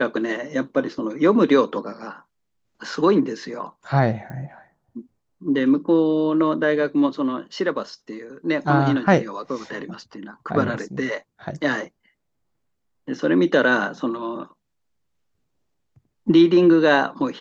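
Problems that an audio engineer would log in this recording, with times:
4.30 s: pop -25 dBFS

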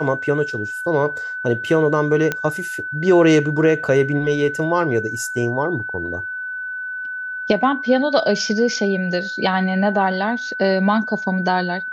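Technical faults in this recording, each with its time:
whine 1.5 kHz -25 dBFS
2.32 s: pop -7 dBFS

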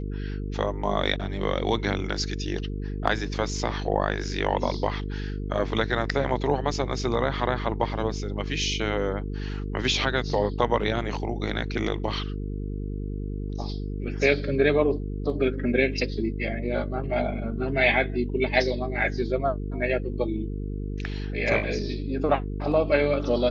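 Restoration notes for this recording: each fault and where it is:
buzz 50 Hz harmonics 9 -31 dBFS

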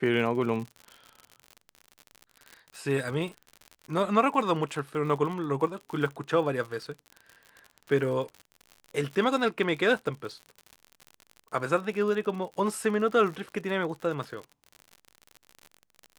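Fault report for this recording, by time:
crackle 62 per s -35 dBFS

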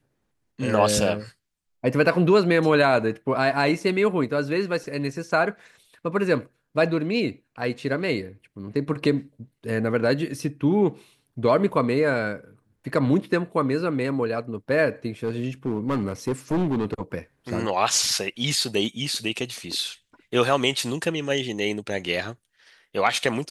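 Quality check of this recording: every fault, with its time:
15.24–17.01 s: clipped -19.5 dBFS

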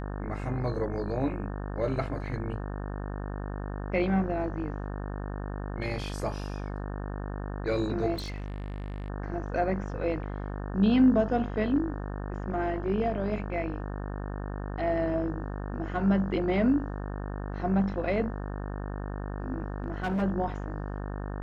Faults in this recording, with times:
buzz 50 Hz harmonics 36 -35 dBFS
8.14–9.08 s: clipped -32 dBFS
19.84–20.23 s: clipped -25.5 dBFS

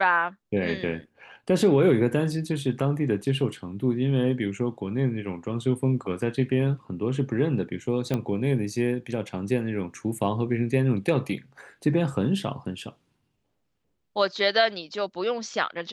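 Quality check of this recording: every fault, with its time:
8.14 s: pop -14 dBFS

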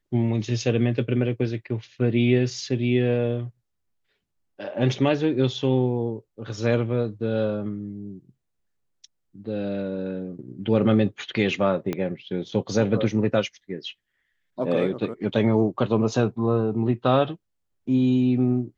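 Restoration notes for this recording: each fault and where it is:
11.93 s: pop -14 dBFS

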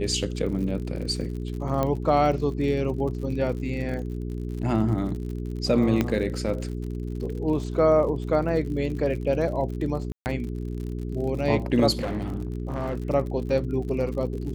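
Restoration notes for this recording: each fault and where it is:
crackle 59 per s -34 dBFS
hum 60 Hz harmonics 7 -31 dBFS
1.83 s: pop -13 dBFS
6.01 s: pop -10 dBFS
10.12–10.26 s: dropout 139 ms
11.97–12.97 s: clipped -24 dBFS

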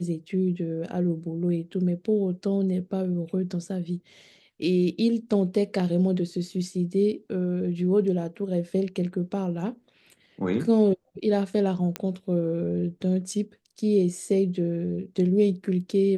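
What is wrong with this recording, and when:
11.96 s: pop -13 dBFS

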